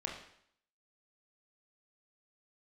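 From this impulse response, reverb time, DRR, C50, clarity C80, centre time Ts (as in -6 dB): 0.65 s, -0.5 dB, 5.0 dB, 8.0 dB, 34 ms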